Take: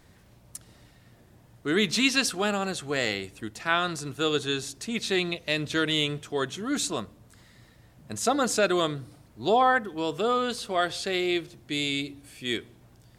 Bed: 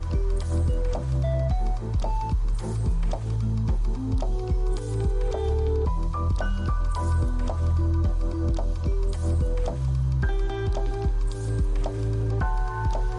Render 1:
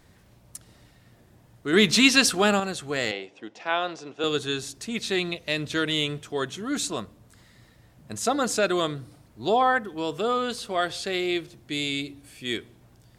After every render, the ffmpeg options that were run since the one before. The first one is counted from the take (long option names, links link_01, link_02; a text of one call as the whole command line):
ffmpeg -i in.wav -filter_complex "[0:a]asettb=1/sr,asplit=3[link_01][link_02][link_03];[link_01]atrim=end=1.734[link_04];[link_02]atrim=start=1.73:end=2.6,asetpts=PTS-STARTPTS,afade=type=in:duration=0.004:curve=qsin,afade=type=out:start_time=0.866:duration=0.004:curve=qsin,acontrast=49[link_05];[link_03]atrim=start=2.596[link_06];[link_04][link_05]acrossfade=duration=0.004:curve1=hsin:curve2=qsin[link_07];[link_07][link_06]acrossfade=duration=0.004:curve1=qsin:curve2=hsin,asettb=1/sr,asplit=3[link_08][link_09][link_10];[link_08]atrim=end=3.114[link_11];[link_09]atrim=start=3.11:end=4.24,asetpts=PTS-STARTPTS,afade=type=in:duration=0.004:curve=qsin,afade=type=out:start_time=1.126:duration=0.004:curve=qsin,highpass=320,equalizer=frequency=530:width_type=q:width=4:gain=5,equalizer=frequency=780:width_type=q:width=4:gain=5,equalizer=frequency=1300:width_type=q:width=4:gain=-5,equalizer=frequency=1800:width_type=q:width=4:gain=-4,equalizer=frequency=4300:width_type=q:width=4:gain=-8,lowpass=frequency=5300:width=0.5412,lowpass=frequency=5300:width=1.3066[link_12];[link_10]atrim=start=4.236[link_13];[link_11][link_12]acrossfade=duration=0.004:curve1=hsin:curve2=qsin[link_14];[link_14][link_13]acrossfade=duration=0.004:curve1=qsin:curve2=hsin" out.wav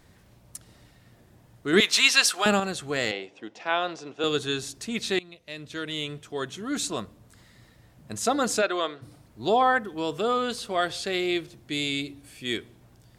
ffmpeg -i in.wav -filter_complex "[0:a]asettb=1/sr,asplit=3[link_01][link_02][link_03];[link_01]atrim=end=1.804[link_04];[link_02]atrim=start=1.8:end=2.46,asetpts=PTS-STARTPTS,afade=type=in:duration=0.004:curve=qsin,afade=type=out:start_time=0.656:duration=0.004:curve=qsin,highpass=810[link_05];[link_03]atrim=start=2.456[link_06];[link_04][link_05]acrossfade=duration=0.004:curve1=hsin:curve2=qsin[link_07];[link_07][link_06]acrossfade=duration=0.004:curve1=qsin:curve2=hsin,asplit=3[link_08][link_09][link_10];[link_08]afade=type=out:start_time=8.61:duration=0.02[link_11];[link_09]highpass=450,lowpass=3800,afade=type=in:start_time=8.61:duration=0.02,afade=type=out:start_time=9.01:duration=0.02[link_12];[link_10]afade=type=in:start_time=9.01:duration=0.02[link_13];[link_11][link_12][link_13]amix=inputs=3:normalize=0,asplit=2[link_14][link_15];[link_14]atrim=end=5.19,asetpts=PTS-STARTPTS,afade=type=out:start_time=5.186:duration=0.004:curve=hsin:silence=0.0944061[link_16];[link_15]atrim=start=5.19,asetpts=PTS-STARTPTS,afade=type=in:duration=1.83:silence=0.0944061[link_17];[link_16][link_17]concat=n=2:v=0:a=1" out.wav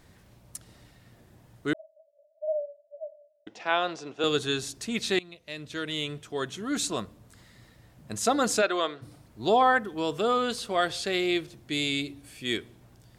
ffmpeg -i in.wav -filter_complex "[0:a]asettb=1/sr,asplit=3[link_01][link_02][link_03];[link_01]atrim=end=1.734[link_04];[link_02]atrim=start=1.73:end=3.47,asetpts=PTS-STARTPTS,afade=type=in:duration=0.004:curve=qsin,afade=type=out:start_time=1.736:duration=0.004:curve=qsin,asuperpass=centerf=610:order=12:qfactor=7.8[link_05];[link_03]atrim=start=3.466[link_06];[link_04][link_05]acrossfade=duration=0.004:curve1=hsin:curve2=qsin[link_07];[link_07][link_06]acrossfade=duration=0.004:curve1=qsin:curve2=hsin" out.wav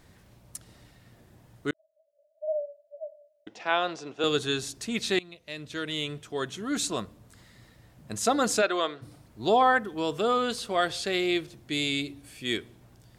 ffmpeg -i in.wav -filter_complex "[0:a]asplit=2[link_01][link_02];[link_01]atrim=end=1.71,asetpts=PTS-STARTPTS,afade=type=out:start_time=1.706:duration=0.004:curve=hsin[link_03];[link_02]atrim=start=1.71,asetpts=PTS-STARTPTS,afade=type=in:duration=0.86[link_04];[link_03][link_04]concat=n=2:v=0:a=1" out.wav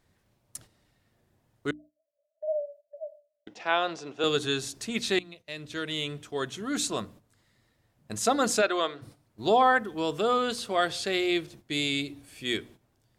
ffmpeg -i in.wav -af "bandreject=frequency=60:width_type=h:width=6,bandreject=frequency=120:width_type=h:width=6,bandreject=frequency=180:width_type=h:width=6,bandreject=frequency=240:width_type=h:width=6,bandreject=frequency=300:width_type=h:width=6,agate=range=-12dB:threshold=-49dB:ratio=16:detection=peak" out.wav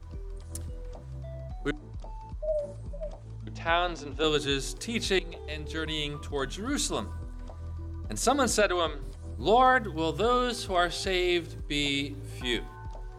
ffmpeg -i in.wav -i bed.wav -filter_complex "[1:a]volume=-15.5dB[link_01];[0:a][link_01]amix=inputs=2:normalize=0" out.wav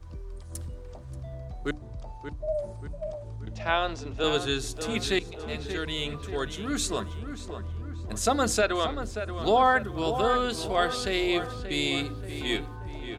ffmpeg -i in.wav -filter_complex "[0:a]asplit=2[link_01][link_02];[link_02]adelay=582,lowpass=frequency=2500:poles=1,volume=-9dB,asplit=2[link_03][link_04];[link_04]adelay=582,lowpass=frequency=2500:poles=1,volume=0.52,asplit=2[link_05][link_06];[link_06]adelay=582,lowpass=frequency=2500:poles=1,volume=0.52,asplit=2[link_07][link_08];[link_08]adelay=582,lowpass=frequency=2500:poles=1,volume=0.52,asplit=2[link_09][link_10];[link_10]adelay=582,lowpass=frequency=2500:poles=1,volume=0.52,asplit=2[link_11][link_12];[link_12]adelay=582,lowpass=frequency=2500:poles=1,volume=0.52[link_13];[link_01][link_03][link_05][link_07][link_09][link_11][link_13]amix=inputs=7:normalize=0" out.wav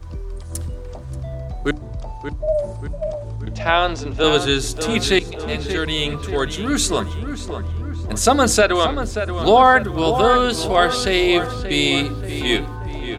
ffmpeg -i in.wav -af "volume=10dB,alimiter=limit=-2dB:level=0:latency=1" out.wav